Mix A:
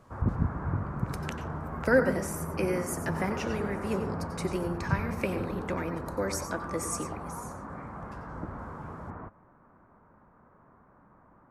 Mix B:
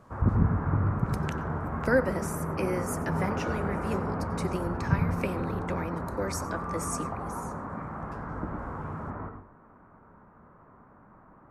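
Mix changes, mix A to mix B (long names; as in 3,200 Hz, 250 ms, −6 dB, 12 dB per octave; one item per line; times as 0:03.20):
speech: send −9.5 dB
background: send on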